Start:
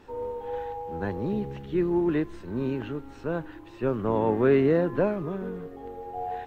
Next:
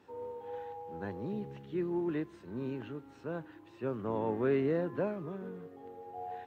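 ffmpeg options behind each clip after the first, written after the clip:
ffmpeg -i in.wav -af "highpass=frequency=90:width=0.5412,highpass=frequency=90:width=1.3066,volume=-9dB" out.wav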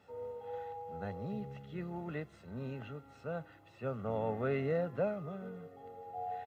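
ffmpeg -i in.wav -af "aecho=1:1:1.5:0.75,volume=-2dB" out.wav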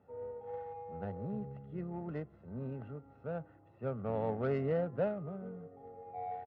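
ffmpeg -i in.wav -af "adynamicsmooth=sensitivity=2:basefreq=1000,volume=1dB" out.wav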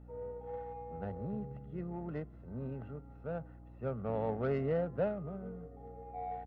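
ffmpeg -i in.wav -af "aeval=exprs='val(0)+0.00251*(sin(2*PI*60*n/s)+sin(2*PI*2*60*n/s)/2+sin(2*PI*3*60*n/s)/3+sin(2*PI*4*60*n/s)/4+sin(2*PI*5*60*n/s)/5)':channel_layout=same" out.wav

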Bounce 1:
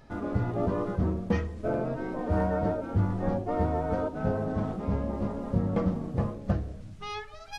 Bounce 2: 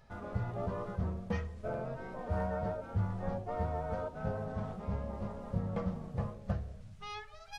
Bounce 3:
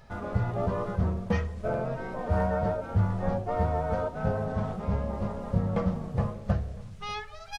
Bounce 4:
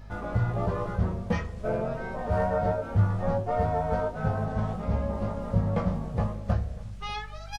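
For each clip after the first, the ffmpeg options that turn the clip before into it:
ffmpeg -i in.wav -af "equalizer=frequency=300:width_type=o:width=0.57:gain=-14.5,volume=-6dB" out.wav
ffmpeg -i in.wav -af "aecho=1:1:590:0.075,volume=8dB" out.wav
ffmpeg -i in.wav -filter_complex "[0:a]aeval=exprs='val(0)+0.00562*(sin(2*PI*50*n/s)+sin(2*PI*2*50*n/s)/2+sin(2*PI*3*50*n/s)/3+sin(2*PI*4*50*n/s)/4+sin(2*PI*5*50*n/s)/5)':channel_layout=same,asplit=2[link_01][link_02];[link_02]adelay=18,volume=-5dB[link_03];[link_01][link_03]amix=inputs=2:normalize=0" out.wav

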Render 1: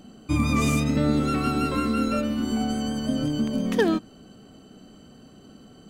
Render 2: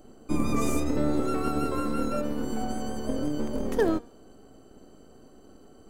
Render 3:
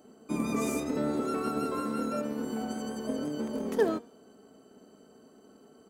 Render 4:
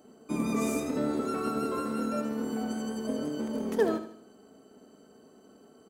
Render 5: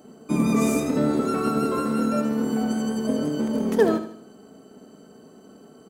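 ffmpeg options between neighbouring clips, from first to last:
ffmpeg -i in.wav -filter_complex "[0:a]equalizer=frequency=3000:width_type=o:width=1.8:gain=-11.5,bandreject=frequency=236.1:width_type=h:width=4,bandreject=frequency=472.2:width_type=h:width=4,bandreject=frequency=708.3:width_type=h:width=4,bandreject=frequency=944.4:width_type=h:width=4,bandreject=frequency=1180.5:width_type=h:width=4,bandreject=frequency=1416.6:width_type=h:width=4,bandreject=frequency=1652.7:width_type=h:width=4,bandreject=frequency=1888.8:width_type=h:width=4,bandreject=frequency=2124.9:width_type=h:width=4,bandreject=frequency=2361:width_type=h:width=4,bandreject=frequency=2597.1:width_type=h:width=4,bandreject=frequency=2833.2:width_type=h:width=4,bandreject=frequency=3069.3:width_type=h:width=4,bandreject=frequency=3305.4:width_type=h:width=4,bandreject=frequency=3541.5:width_type=h:width=4,bandreject=frequency=3777.6:width_type=h:width=4,bandreject=frequency=4013.7:width_type=h:width=4,bandreject=frequency=4249.8:width_type=h:width=4,bandreject=frequency=4485.9:width_type=h:width=4,bandreject=frequency=4722:width_type=h:width=4,bandreject=frequency=4958.1:width_type=h:width=4,bandreject=frequency=5194.2:width_type=h:width=4,bandreject=frequency=5430.3:width_type=h:width=4,bandreject=frequency=5666.4:width_type=h:width=4,bandreject=frequency=5902.5:width_type=h:width=4,bandreject=frequency=6138.6:width_type=h:width=4,bandreject=frequency=6374.7:width_type=h:width=4,bandreject=frequency=6610.8:width_type=h:width=4,bandreject=frequency=6846.9:width_type=h:width=4,bandreject=frequency=7083:width_type=h:width=4,bandreject=frequency=7319.1:width_type=h:width=4,bandreject=frequency=7555.2:width_type=h:width=4,acrossover=split=250[link_01][link_02];[link_01]aeval=exprs='abs(val(0))':channel_layout=same[link_03];[link_03][link_02]amix=inputs=2:normalize=0" out.wav
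ffmpeg -i in.wav -af "highpass=150,aecho=1:1:4.6:0.37,volume=-3dB" out.wav
ffmpeg -i in.wav -af "aecho=1:1:77|154|231|308:0.282|0.116|0.0474|0.0194" out.wav
ffmpeg -i in.wav -af "equalizer=frequency=160:width_type=o:width=0.78:gain=6,volume=6.5dB" out.wav

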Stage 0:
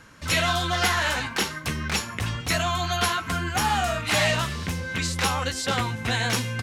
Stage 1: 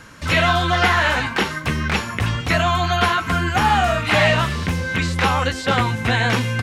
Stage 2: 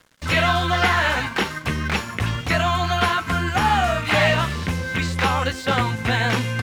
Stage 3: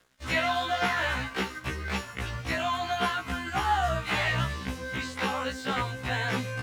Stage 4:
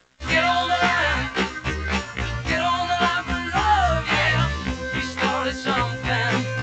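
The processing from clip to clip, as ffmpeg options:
ffmpeg -i in.wav -filter_complex "[0:a]acrossover=split=3300[link_01][link_02];[link_02]acompressor=threshold=-43dB:ratio=4:attack=1:release=60[link_03];[link_01][link_03]amix=inputs=2:normalize=0,volume=7.5dB" out.wav
ffmpeg -i in.wav -af "aeval=exprs='sgn(val(0))*max(abs(val(0))-0.0112,0)':channel_layout=same,volume=-1.5dB" out.wav
ffmpeg -i in.wav -af "afftfilt=real='re*1.73*eq(mod(b,3),0)':imag='im*1.73*eq(mod(b,3),0)':win_size=2048:overlap=0.75,volume=-6dB" out.wav
ffmpeg -i in.wav -af "volume=7.5dB" -ar 16000 -c:a g722 out.g722

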